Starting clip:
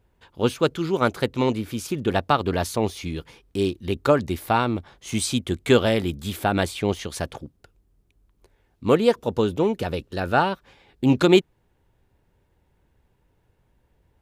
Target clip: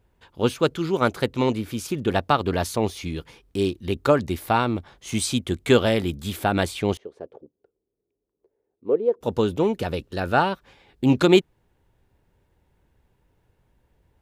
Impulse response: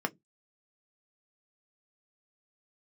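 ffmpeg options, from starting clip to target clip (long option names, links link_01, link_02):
-filter_complex "[0:a]asettb=1/sr,asplit=3[link_01][link_02][link_03];[link_01]atrim=end=6.974[link_04];[link_02]atrim=start=6.97:end=9.21,asetpts=PTS-STARTPTS,afade=type=in:duration=0.004:curve=qsin,afade=type=out:start_time=2.236:duration=0.004:curve=qsin,bandpass=frequency=430:width_type=q:width=3.5:csg=0[link_05];[link_03]atrim=start=9.206[link_06];[link_04][link_05]acrossfade=duration=0.004:curve1=hsin:curve2=qsin[link_07];[link_07][link_06]acrossfade=duration=0.004:curve1=qsin:curve2=hsin"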